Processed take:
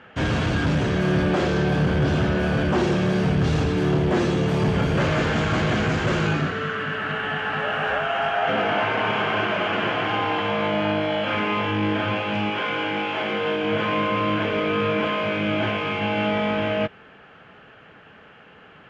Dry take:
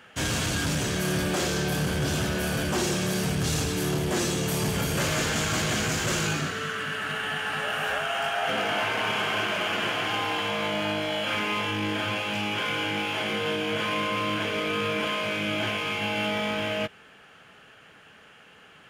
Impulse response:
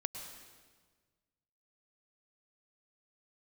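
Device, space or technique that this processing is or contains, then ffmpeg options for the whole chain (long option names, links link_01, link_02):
phone in a pocket: -filter_complex "[0:a]lowpass=3700,highshelf=frequency=2200:gain=-9.5,asettb=1/sr,asplit=3[link_01][link_02][link_03];[link_01]atrim=end=12.504[link_04];[link_02]atrim=start=12.5:end=13.64,asetpts=PTS-STARTPTS,afade=type=in:duration=0.004:curve=qsin,afade=type=out:start_time=1.136:duration=0.004:curve=qsin,highpass=frequency=280:poles=1[link_05];[link_03]atrim=start=13.636[link_06];[link_04][link_05]acrossfade=duration=0.004:curve1=hsin:curve2=qsin[link_07];[link_07][link_06]acrossfade=duration=0.004:curve1=qsin:curve2=hsin,volume=7dB"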